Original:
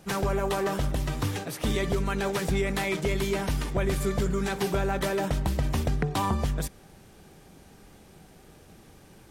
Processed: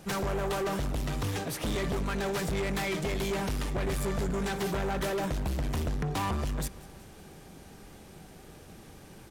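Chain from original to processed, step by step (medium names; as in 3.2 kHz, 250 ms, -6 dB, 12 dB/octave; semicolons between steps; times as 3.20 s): saturation -30 dBFS, distortion -9 dB; on a send: feedback delay 185 ms, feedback 57%, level -21 dB; on the sum: trim +2.5 dB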